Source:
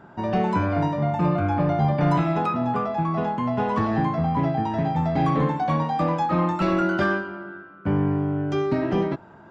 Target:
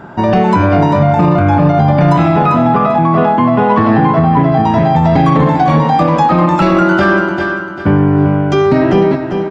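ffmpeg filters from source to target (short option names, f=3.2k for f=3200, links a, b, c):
-filter_complex "[0:a]asettb=1/sr,asplit=3[a][b][c];[a]atrim=end=2.364[d];[b]atrim=start=2.36:end=4.52,asetpts=PTS-STARTPTS,afade=t=in:d=0.004:c=qsin,afade=t=out:st=2.156:d=0.004:c=qsin,highpass=100,lowpass=3.5k[e];[c]atrim=start=4.516[f];[d][e]acrossfade=d=0.004:c1=hsin:c2=qsin[g];[g][f]acrossfade=d=0.004:c1=qsin:c2=hsin,aecho=1:1:394|788|1182|1576:0.316|0.108|0.0366|0.0124,alimiter=level_in=16dB:limit=-1dB:release=50:level=0:latency=1,volume=-1dB"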